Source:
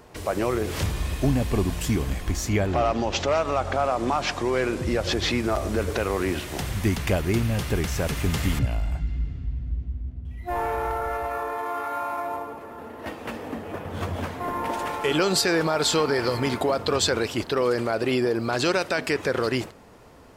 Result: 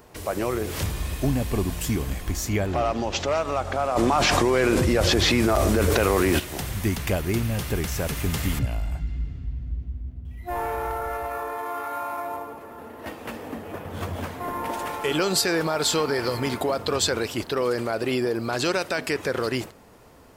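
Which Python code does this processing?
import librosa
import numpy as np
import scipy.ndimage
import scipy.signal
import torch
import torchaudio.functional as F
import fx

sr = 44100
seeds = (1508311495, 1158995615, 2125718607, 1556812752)

y = fx.high_shelf(x, sr, hz=11000.0, db=10.5)
y = fx.env_flatten(y, sr, amount_pct=100, at=(3.95, 6.38), fade=0.02)
y = y * 10.0 ** (-1.5 / 20.0)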